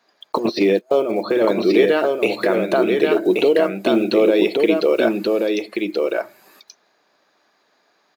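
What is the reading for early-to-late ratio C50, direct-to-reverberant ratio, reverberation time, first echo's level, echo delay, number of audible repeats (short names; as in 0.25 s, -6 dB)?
none, none, none, -3.5 dB, 1.13 s, 1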